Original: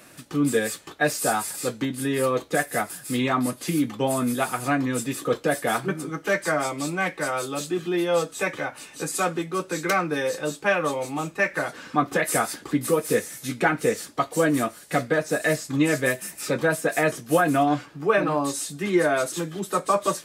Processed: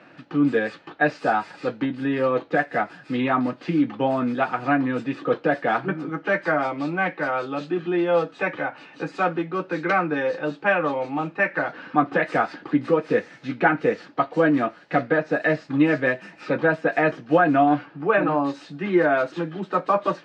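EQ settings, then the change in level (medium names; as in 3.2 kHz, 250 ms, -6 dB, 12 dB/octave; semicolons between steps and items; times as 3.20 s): cabinet simulation 200–3800 Hz, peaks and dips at 230 Hz -5 dB, 410 Hz -8 dB, 600 Hz -4 dB, 1.1 kHz -5 dB, 2.1 kHz -4 dB, 3.5 kHz -6 dB; treble shelf 2.8 kHz -10 dB; +6.5 dB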